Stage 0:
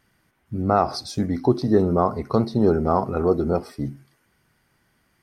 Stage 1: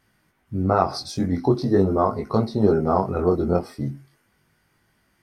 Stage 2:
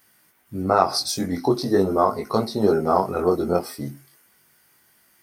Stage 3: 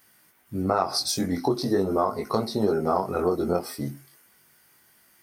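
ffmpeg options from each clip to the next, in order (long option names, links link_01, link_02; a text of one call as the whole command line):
ffmpeg -i in.wav -af "flanger=delay=19:depth=3.8:speed=0.42,volume=3dB" out.wav
ffmpeg -i in.wav -af "aemphasis=mode=production:type=bsi,volume=2.5dB" out.wav
ffmpeg -i in.wav -af "acompressor=threshold=-21dB:ratio=2.5" out.wav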